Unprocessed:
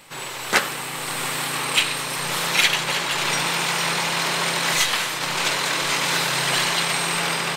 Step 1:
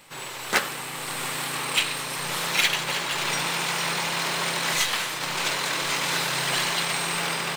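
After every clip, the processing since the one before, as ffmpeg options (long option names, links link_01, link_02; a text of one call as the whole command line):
ffmpeg -i in.wav -af "acrusher=bits=4:mode=log:mix=0:aa=0.000001,volume=-4dB" out.wav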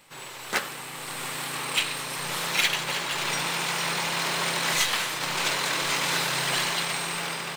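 ffmpeg -i in.wav -af "dynaudnorm=framelen=550:gausssize=5:maxgain=4.5dB,volume=-4.5dB" out.wav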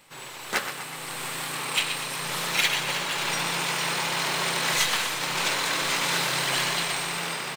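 ffmpeg -i in.wav -af "aecho=1:1:124|248|372|496|620|744:0.316|0.174|0.0957|0.0526|0.0289|0.0159" out.wav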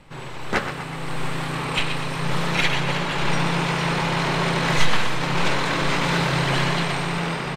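ffmpeg -i in.wav -af "aemphasis=mode=reproduction:type=riaa,volume=5dB" out.wav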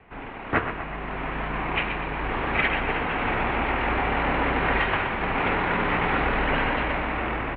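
ffmpeg -i in.wav -af "highpass=frequency=150:width_type=q:width=0.5412,highpass=frequency=150:width_type=q:width=1.307,lowpass=frequency=2800:width_type=q:width=0.5176,lowpass=frequency=2800:width_type=q:width=0.7071,lowpass=frequency=2800:width_type=q:width=1.932,afreqshift=-110,bandreject=frequency=60:width_type=h:width=6,bandreject=frequency=120:width_type=h:width=6,bandreject=frequency=180:width_type=h:width=6" out.wav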